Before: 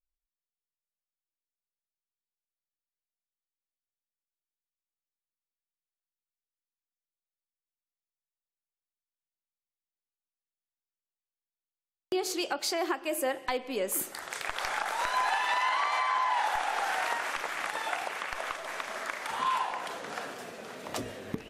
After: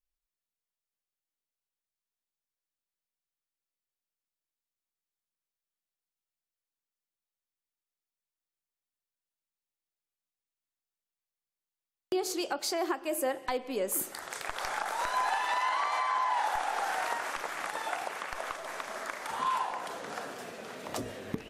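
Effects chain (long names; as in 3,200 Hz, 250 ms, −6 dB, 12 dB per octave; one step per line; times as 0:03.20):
dynamic equaliser 2,600 Hz, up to −5 dB, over −45 dBFS, Q 0.87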